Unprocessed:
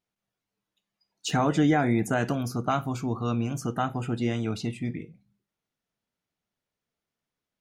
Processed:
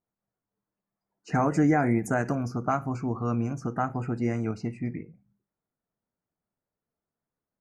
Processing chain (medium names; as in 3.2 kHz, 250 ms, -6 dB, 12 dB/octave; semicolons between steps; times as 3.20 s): level-controlled noise filter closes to 1.3 kHz, open at -20 dBFS; Butterworth band-stop 3.4 kHz, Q 1.2; endings held to a fixed fall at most 230 dB/s